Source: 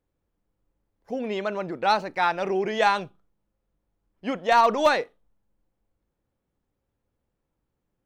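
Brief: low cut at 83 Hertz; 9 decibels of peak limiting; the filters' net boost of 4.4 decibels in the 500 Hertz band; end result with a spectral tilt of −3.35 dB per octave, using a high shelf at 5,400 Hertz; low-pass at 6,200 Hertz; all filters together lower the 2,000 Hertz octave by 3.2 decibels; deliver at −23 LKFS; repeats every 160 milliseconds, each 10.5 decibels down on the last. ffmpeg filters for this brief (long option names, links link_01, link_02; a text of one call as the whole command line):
ffmpeg -i in.wav -af "highpass=83,lowpass=6200,equalizer=frequency=500:width_type=o:gain=6,equalizer=frequency=2000:width_type=o:gain=-4,highshelf=frequency=5400:gain=-6,alimiter=limit=-14.5dB:level=0:latency=1,aecho=1:1:160|320|480:0.299|0.0896|0.0269,volume=2dB" out.wav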